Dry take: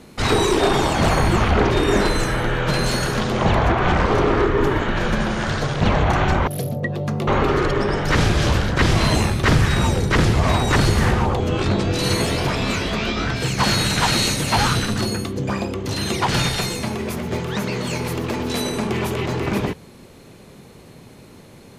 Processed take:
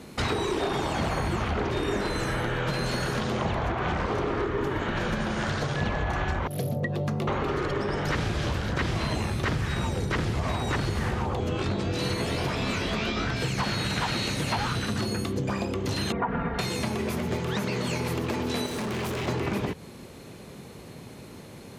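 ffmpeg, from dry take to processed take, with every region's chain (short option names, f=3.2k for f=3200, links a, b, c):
-filter_complex "[0:a]asettb=1/sr,asplit=3[a][b][c];[a]atrim=end=5.764[d];[b]atrim=start=5.76:end=6.39,asetpts=PTS-STARTPTS,afade=t=in:d=0.004:c=qsin,afade=t=out:st=0.626:d=0.004:c=qsin,aeval=exprs='val(0)+0.0447*sin(2*PI*1700*n/s)':c=same,asubboost=boost=11:cutoff=76[e];[c]atrim=start=6.386[f];[d][e]acrossfade=d=0.004:c1=hsin:c2=qsin[g];[g][f]acrossfade=d=0.004:c1=qsin:c2=hsin,asettb=1/sr,asplit=3[h][i][j];[h]atrim=end=16.124[k];[i]atrim=start=16.12:end=16.59,asetpts=PTS-STARTPTS,afade=t=in:d=0.004:c=qsin,afade=t=out:st=0.466:d=0.004:c=qsin,lowpass=f=1.6k:w=0.5412,lowpass=f=1.6k:w=1.3066,aecho=1:1:4.3:0.79,atrim=end_sample=20727[l];[j]atrim=start=16.586[m];[k][l]acrossfade=d=0.004:c1=hsin:c2=qsin[n];[n][m]acrossfade=d=0.004:c1=qsin:c2=hsin,asettb=1/sr,asplit=3[o][p][q];[o]atrim=end=18.664[r];[p]atrim=start=18.66:end=19.28,asetpts=PTS-STARTPTS,afade=t=in:d=0.004:c=qsin,afade=t=out:st=0.616:d=0.004:c=qsin,bandreject=f=75.22:t=h:w=4,bandreject=f=150.44:t=h:w=4,bandreject=f=225.66:t=h:w=4,bandreject=f=300.88:t=h:w=4,bandreject=f=376.1:t=h:w=4,bandreject=f=451.32:t=h:w=4,bandreject=f=526.54:t=h:w=4,bandreject=f=601.76:t=h:w=4,bandreject=f=676.98:t=h:w=4,bandreject=f=752.2:t=h:w=4,bandreject=f=827.42:t=h:w=4,bandreject=f=902.64:t=h:w=4,bandreject=f=977.86:t=h:w=4,bandreject=f=1.05308k:t=h:w=4,bandreject=f=1.1283k:t=h:w=4,bandreject=f=1.20352k:t=h:w=4,bandreject=f=1.27874k:t=h:w=4,bandreject=f=1.35396k:t=h:w=4,bandreject=f=1.42918k:t=h:w=4,bandreject=f=1.5044k:t=h:w=4,bandreject=f=1.57962k:t=h:w=4,bandreject=f=1.65484k:t=h:w=4,bandreject=f=1.73006k:t=h:w=4,bandreject=f=1.80528k:t=h:w=4,bandreject=f=1.8805k:t=h:w=4,bandreject=f=1.95572k:t=h:w=4,bandreject=f=2.03094k:t=h:w=4,bandreject=f=2.10616k:t=h:w=4,bandreject=f=2.18138k:t=h:w=4,bandreject=f=2.2566k:t=h:w=4,bandreject=f=2.33182k:t=h:w=4,bandreject=f=2.40704k:t=h:w=4,asoftclip=type=hard:threshold=-28.5dB[s];[q]atrim=start=19.276[t];[r][s]acrossfade=d=0.004:c1=hsin:c2=qsin[u];[u][t]acrossfade=d=0.004:c1=qsin:c2=hsin,acrossover=split=4400[v][w];[w]acompressor=threshold=-34dB:ratio=4:attack=1:release=60[x];[v][x]amix=inputs=2:normalize=0,highpass=43,acompressor=threshold=-25dB:ratio=6"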